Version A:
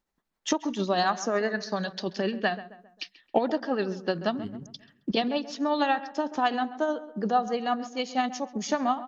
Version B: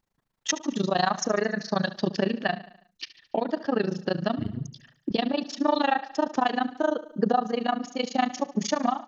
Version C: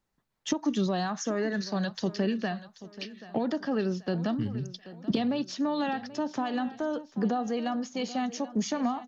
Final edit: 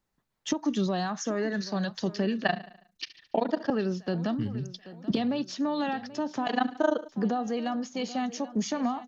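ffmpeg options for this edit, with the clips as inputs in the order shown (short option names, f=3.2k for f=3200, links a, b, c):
-filter_complex "[1:a]asplit=2[a][b];[2:a]asplit=3[c][d][e];[c]atrim=end=2.422[f];[a]atrim=start=2.418:end=3.702[g];[d]atrim=start=3.698:end=6.472[h];[b]atrim=start=6.468:end=7.092[i];[e]atrim=start=7.088[j];[f][g]acrossfade=d=0.004:c1=hsin:c2=hsin[k];[k][h]acrossfade=d=0.004:c1=hsin:c2=hsin[l];[l][i]acrossfade=d=0.004:c1=hsin:c2=hsin[m];[m][j]acrossfade=d=0.004:c1=hsin:c2=hsin"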